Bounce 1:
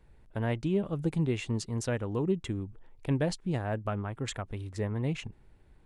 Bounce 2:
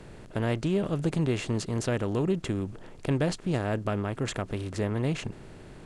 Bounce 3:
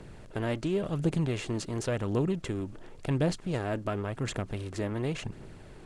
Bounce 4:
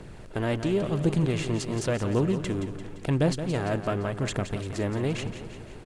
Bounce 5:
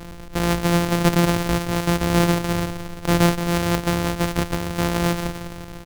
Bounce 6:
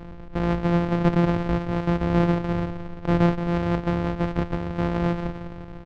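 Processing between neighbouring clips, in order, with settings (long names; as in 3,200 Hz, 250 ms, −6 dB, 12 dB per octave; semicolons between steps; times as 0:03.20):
compressor on every frequency bin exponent 0.6
phase shifter 0.92 Hz, delay 3.7 ms, feedback 34%; level −3 dB
repeating echo 172 ms, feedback 57%, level −10 dB; level +3.5 dB
samples sorted by size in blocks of 256 samples; level +6.5 dB
head-to-tape spacing loss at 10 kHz 35 dB; level −1 dB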